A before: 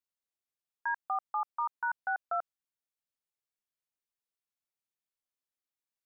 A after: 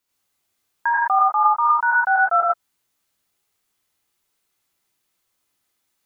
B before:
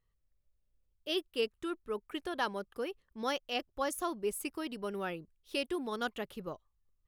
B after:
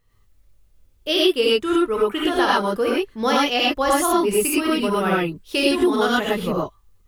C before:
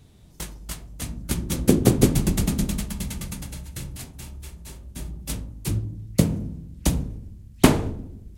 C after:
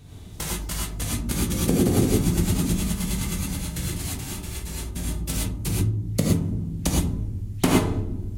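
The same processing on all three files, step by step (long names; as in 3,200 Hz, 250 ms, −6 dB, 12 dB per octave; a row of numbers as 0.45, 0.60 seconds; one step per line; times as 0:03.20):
reverb whose tail is shaped and stops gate 140 ms rising, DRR −6 dB
downward compressor 2 to 1, threshold −30 dBFS
normalise the peak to −6 dBFS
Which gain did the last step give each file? +13.5, +13.0, +3.0 decibels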